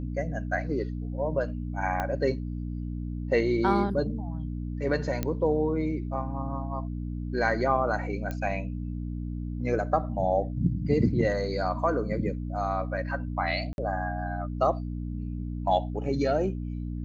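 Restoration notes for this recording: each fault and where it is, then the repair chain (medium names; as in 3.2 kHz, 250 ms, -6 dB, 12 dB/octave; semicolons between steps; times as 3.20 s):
hum 60 Hz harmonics 5 -33 dBFS
2.00 s: pop -16 dBFS
5.23 s: pop -14 dBFS
8.31 s: pop -20 dBFS
13.73–13.78 s: dropout 51 ms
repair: de-click; de-hum 60 Hz, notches 5; interpolate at 13.73 s, 51 ms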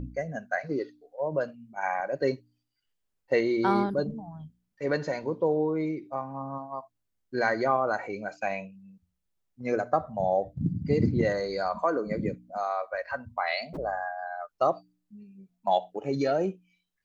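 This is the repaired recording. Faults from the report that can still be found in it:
2.00 s: pop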